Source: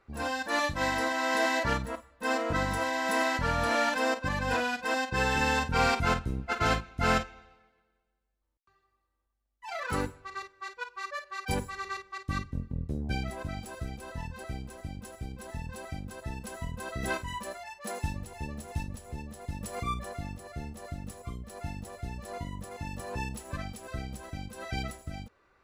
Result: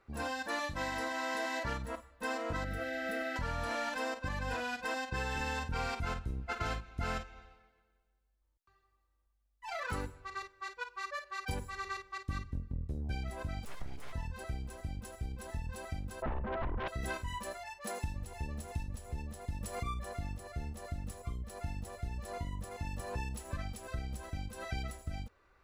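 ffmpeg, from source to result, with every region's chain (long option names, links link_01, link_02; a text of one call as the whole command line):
ffmpeg -i in.wav -filter_complex "[0:a]asettb=1/sr,asplit=3[link_01][link_02][link_03];[link_01]atrim=end=2.644[link_04];[link_02]atrim=start=2.64:end=3.36,asetpts=PTS-STARTPTS,afade=type=in:duration=0.004:curve=qsin,afade=type=out:start_time=0.716:duration=0.004:curve=qsin,asuperstop=centerf=940:order=12:qfactor=2.3,equalizer=frequency=7300:width=0.64:gain=-13[link_05];[link_03]atrim=start=3.356[link_06];[link_04][link_05]acrossfade=duration=0.004:curve1=hsin:curve2=qsin[link_07];[link_07][link_06]acrossfade=duration=0.004:curve1=qsin:curve2=hsin,asettb=1/sr,asplit=3[link_08][link_09][link_10];[link_08]atrim=end=13.654[link_11];[link_09]atrim=start=13.65:end=14.13,asetpts=PTS-STARTPTS,afade=type=in:duration=0.004:curve=qsin,afade=type=out:start_time=0.476:duration=0.004:curve=qsin,highshelf=frequency=7100:gain=-6,aeval=exprs='abs(val(0))':channel_layout=same[link_12];[link_10]atrim=start=14.126[link_13];[link_11][link_12]acrossfade=duration=0.004:curve1=hsin:curve2=qsin[link_14];[link_14][link_13]acrossfade=duration=0.004:curve1=qsin:curve2=hsin,asettb=1/sr,asplit=3[link_15][link_16][link_17];[link_15]atrim=end=16.224[link_18];[link_16]atrim=start=16.22:end=16.88,asetpts=PTS-STARTPTS,afade=type=in:duration=0.004:curve=qsin,afade=type=out:start_time=0.656:duration=0.004:curve=qsin,lowpass=frequency=1500:width=0.5412,lowpass=frequency=1500:width=1.3066,aeval=exprs='0.0596*sin(PI/2*4.47*val(0)/0.0596)':channel_layout=same[link_19];[link_17]atrim=start=16.876[link_20];[link_18][link_19]acrossfade=duration=0.004:curve1=hsin:curve2=qsin[link_21];[link_21][link_20]acrossfade=duration=0.004:curve1=qsin:curve2=hsin,asubboost=boost=2:cutoff=100,acompressor=threshold=-32dB:ratio=4,volume=-2dB" out.wav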